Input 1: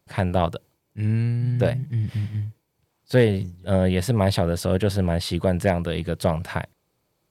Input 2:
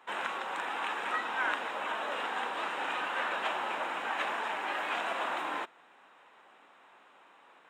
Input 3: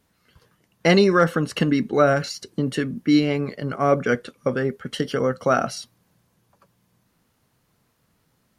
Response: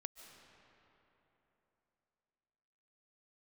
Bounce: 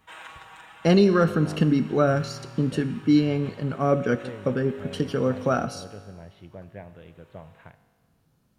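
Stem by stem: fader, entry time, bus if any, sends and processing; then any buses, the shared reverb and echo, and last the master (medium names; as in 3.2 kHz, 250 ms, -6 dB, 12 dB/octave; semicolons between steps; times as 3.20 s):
-14.0 dB, 1.10 s, no send, steep low-pass 3.1 kHz
-4.5 dB, 0.00 s, no send, tilt EQ +2.5 dB/octave; comb 6.3 ms, depth 94%; gain riding; auto duck -9 dB, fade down 1.10 s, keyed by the third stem
+0.5 dB, 0.00 s, no send, bass shelf 370 Hz +9 dB; band-stop 2 kHz, Q 7.6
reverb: none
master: feedback comb 51 Hz, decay 1.7 s, harmonics all, mix 60%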